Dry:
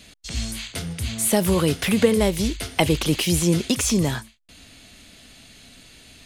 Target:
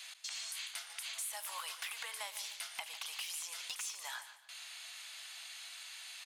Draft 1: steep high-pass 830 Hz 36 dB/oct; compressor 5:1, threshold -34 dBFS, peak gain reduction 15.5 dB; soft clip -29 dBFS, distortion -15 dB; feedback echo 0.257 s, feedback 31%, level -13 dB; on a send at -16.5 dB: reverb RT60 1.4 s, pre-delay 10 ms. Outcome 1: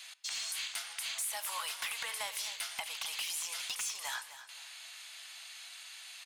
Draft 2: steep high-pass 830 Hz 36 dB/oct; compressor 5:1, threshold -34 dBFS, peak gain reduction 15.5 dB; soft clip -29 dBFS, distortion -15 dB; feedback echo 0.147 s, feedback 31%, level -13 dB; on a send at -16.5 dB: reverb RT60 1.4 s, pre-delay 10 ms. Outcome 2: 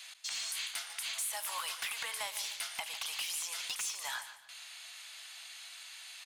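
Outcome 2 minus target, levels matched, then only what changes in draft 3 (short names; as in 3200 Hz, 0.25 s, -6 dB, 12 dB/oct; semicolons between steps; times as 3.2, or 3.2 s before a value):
compressor: peak gain reduction -5.5 dB
change: compressor 5:1, threshold -41 dBFS, peak gain reduction 21 dB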